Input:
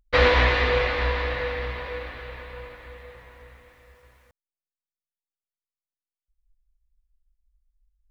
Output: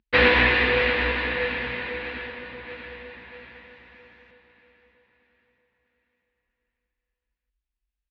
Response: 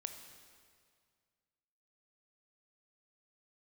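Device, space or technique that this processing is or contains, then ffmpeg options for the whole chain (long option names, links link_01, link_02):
guitar cabinet: -filter_complex "[0:a]highpass=90,equalizer=frequency=220:width_type=q:width=4:gain=10,equalizer=frequency=340:width_type=q:width=4:gain=5,equalizer=frequency=600:width_type=q:width=4:gain=-6,equalizer=frequency=1200:width_type=q:width=4:gain=-4,equalizer=frequency=1700:width_type=q:width=4:gain=5,equalizer=frequency=2600:width_type=q:width=4:gain=7,lowpass=frequency=4500:width=0.5412,lowpass=frequency=4500:width=1.3066,asettb=1/sr,asplit=3[link_01][link_02][link_03];[link_01]atrim=end=2.274[link_04];[link_02]atrim=start=2.27:end=2.67,asetpts=PTS-STARTPTS,afade=type=in:duration=0.004:curve=qsin,afade=type=out:start_time=0.396:duration=0.004:curve=qsin,lowpass=1200[link_05];[link_03]atrim=start=2.666[link_06];[link_04][link_05]acrossfade=duration=0.004:curve1=hsin:curve2=qsin[link_07];[link_07][link_06]acrossfade=duration=0.004:curve1=qsin:curve2=hsin,aecho=1:1:638|1276|1914|2552|3190:0.237|0.123|0.0641|0.0333|0.0173"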